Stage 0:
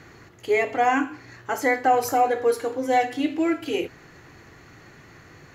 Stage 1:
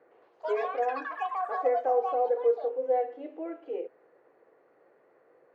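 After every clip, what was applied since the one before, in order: ladder band-pass 560 Hz, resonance 65%; echoes that change speed 0.111 s, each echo +7 st, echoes 3, each echo -6 dB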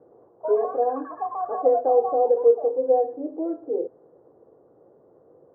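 LPF 1200 Hz 24 dB/oct; tilt -5.5 dB/oct; gain +2 dB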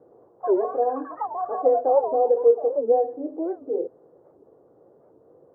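record warp 78 rpm, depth 250 cents

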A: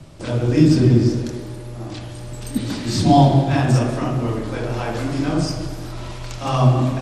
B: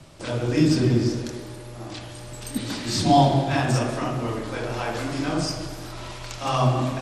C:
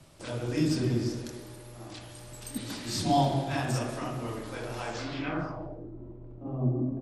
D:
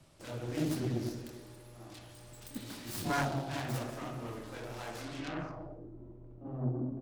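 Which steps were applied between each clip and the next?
low shelf 420 Hz -8 dB
low-pass sweep 12000 Hz -> 330 Hz, 4.75–5.92; gain -8 dB
self-modulated delay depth 0.52 ms; gain -6 dB

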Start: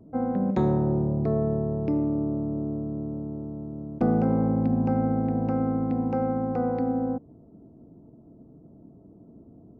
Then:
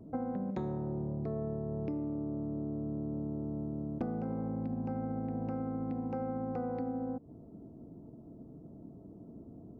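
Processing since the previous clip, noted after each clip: compressor 10:1, threshold -33 dBFS, peak gain reduction 15 dB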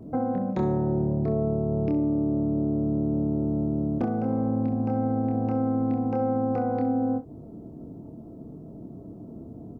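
early reflections 27 ms -4.5 dB, 65 ms -14 dB; gain +7.5 dB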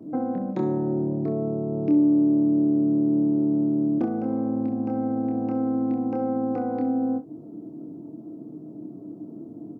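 HPF 130 Hz 24 dB/oct; bell 310 Hz +12.5 dB 0.31 oct; gain -2.5 dB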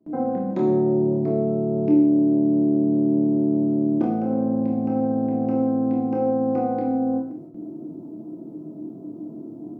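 gate with hold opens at -33 dBFS; non-linear reverb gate 0.21 s falling, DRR -0.5 dB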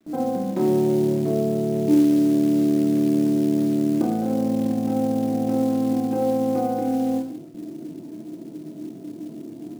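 companded quantiser 6-bit

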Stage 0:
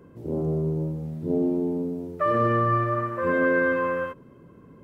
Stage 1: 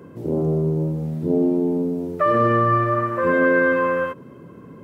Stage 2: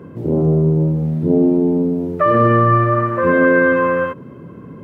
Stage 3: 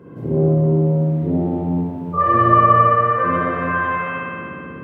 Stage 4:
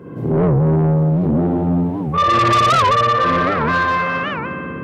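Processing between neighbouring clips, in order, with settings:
HPF 100 Hz; in parallel at -1 dB: compressor, threshold -32 dBFS, peak gain reduction 12.5 dB; on the sum: gain +3 dB
tone controls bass +4 dB, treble -8 dB; gain +4 dB
spectral repair 2.17–2.69, 410–1400 Hz after; spring tank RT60 2.5 s, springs 58 ms, chirp 80 ms, DRR -7.5 dB; gain -7 dB
soft clip -17 dBFS, distortion -9 dB; record warp 78 rpm, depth 250 cents; gain +6 dB

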